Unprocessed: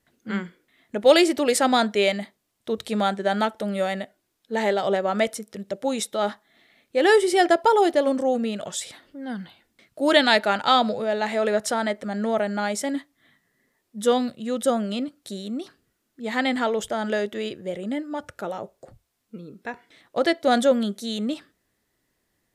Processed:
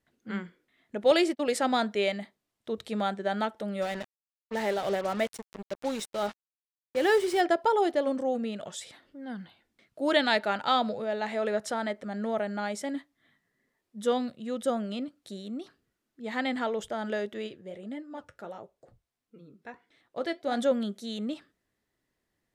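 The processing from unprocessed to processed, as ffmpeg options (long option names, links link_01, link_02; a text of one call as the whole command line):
ffmpeg -i in.wav -filter_complex "[0:a]asettb=1/sr,asplit=3[link_01][link_02][link_03];[link_01]atrim=end=1.114[link_04];[link_02]atrim=start=1.11:end=1.58,asetpts=PTS-STARTPTS,afade=type=in:duration=0.004:curve=qsin,afade=type=out:start_time=0.466:duration=0.004:curve=qsin,agate=range=-35dB:threshold=-26dB:ratio=16:release=100:detection=peak[link_05];[link_03]atrim=start=1.576[link_06];[link_04][link_05]acrossfade=duration=0.004:curve1=hsin:curve2=qsin[link_07];[link_07][link_06]acrossfade=duration=0.004:curve1=qsin:curve2=hsin,asplit=3[link_08][link_09][link_10];[link_08]afade=type=out:start_time=3.81:duration=0.02[link_11];[link_09]acrusher=bits=4:mix=0:aa=0.5,afade=type=in:start_time=3.81:duration=0.02,afade=type=out:start_time=7.4:duration=0.02[link_12];[link_10]afade=type=in:start_time=7.4:duration=0.02[link_13];[link_11][link_12][link_13]amix=inputs=3:normalize=0,asplit=3[link_14][link_15][link_16];[link_14]afade=type=out:start_time=17.46:duration=0.02[link_17];[link_15]flanger=delay=2.3:depth=7.8:regen=-64:speed=1.5:shape=sinusoidal,afade=type=in:start_time=17.46:duration=0.02,afade=type=out:start_time=20.57:duration=0.02[link_18];[link_16]afade=type=in:start_time=20.57:duration=0.02[link_19];[link_17][link_18][link_19]amix=inputs=3:normalize=0,highshelf=frequency=6700:gain=-7.5,volume=-6.5dB" out.wav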